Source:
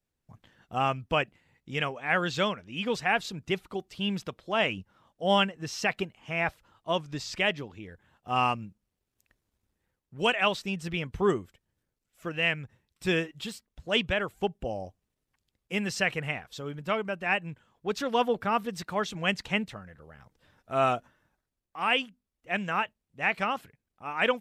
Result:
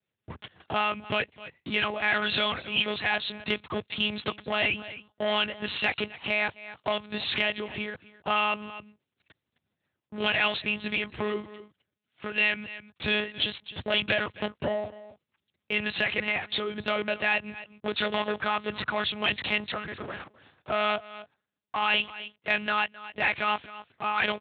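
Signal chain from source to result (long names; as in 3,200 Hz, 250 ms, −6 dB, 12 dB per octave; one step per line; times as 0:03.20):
in parallel at +1 dB: brickwall limiter −20 dBFS, peak gain reduction 7.5 dB
on the sum: leveller curve on the samples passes 3
dynamic equaliser 230 Hz, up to −6 dB, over −32 dBFS, Q 0.78
single-tap delay 260 ms −22 dB
one-pitch LPC vocoder at 8 kHz 210 Hz
high-pass filter 84 Hz 24 dB per octave
downward compressor 2 to 1, threshold −31 dBFS, peak gain reduction 11 dB
high-shelf EQ 2,600 Hz +9 dB
amplitude modulation by smooth noise, depth 50%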